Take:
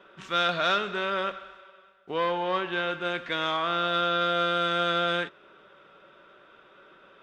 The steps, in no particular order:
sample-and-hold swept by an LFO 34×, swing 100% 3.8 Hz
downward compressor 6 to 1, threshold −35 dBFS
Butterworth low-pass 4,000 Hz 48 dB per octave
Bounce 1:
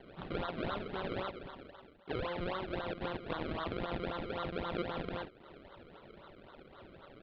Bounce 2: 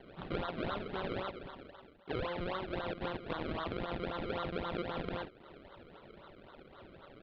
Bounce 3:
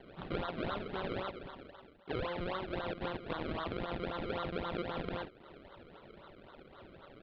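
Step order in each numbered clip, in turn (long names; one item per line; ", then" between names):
downward compressor, then sample-and-hold swept by an LFO, then Butterworth low-pass
sample-and-hold swept by an LFO, then Butterworth low-pass, then downward compressor
sample-and-hold swept by an LFO, then downward compressor, then Butterworth low-pass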